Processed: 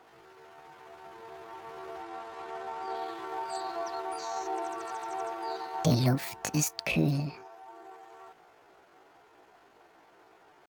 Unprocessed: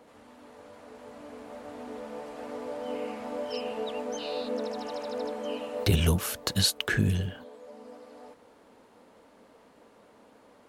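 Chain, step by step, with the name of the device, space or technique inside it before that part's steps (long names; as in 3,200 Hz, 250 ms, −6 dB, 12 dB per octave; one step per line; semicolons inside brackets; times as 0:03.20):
0:02.04–0:02.98: low-pass filter 6,600 Hz 12 dB per octave
high-shelf EQ 4,300 Hz −6 dB
chipmunk voice (pitch shifter +7.5 semitones)
level −1.5 dB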